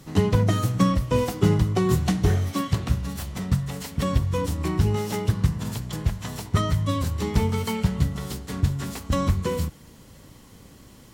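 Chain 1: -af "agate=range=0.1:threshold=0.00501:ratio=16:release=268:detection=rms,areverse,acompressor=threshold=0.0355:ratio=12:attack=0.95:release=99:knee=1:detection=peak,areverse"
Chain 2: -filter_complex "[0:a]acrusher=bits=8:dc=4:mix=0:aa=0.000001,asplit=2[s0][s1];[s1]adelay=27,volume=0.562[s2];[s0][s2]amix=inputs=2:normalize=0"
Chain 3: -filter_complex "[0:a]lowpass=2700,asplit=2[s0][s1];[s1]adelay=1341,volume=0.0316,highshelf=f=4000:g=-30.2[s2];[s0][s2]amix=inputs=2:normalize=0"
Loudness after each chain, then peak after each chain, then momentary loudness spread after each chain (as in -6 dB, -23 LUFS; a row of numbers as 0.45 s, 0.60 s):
-35.0 LUFS, -23.5 LUFS, -25.0 LUFS; -24.0 dBFS, -6.5 dBFS, -7.0 dBFS; 9 LU, 10 LU, 9 LU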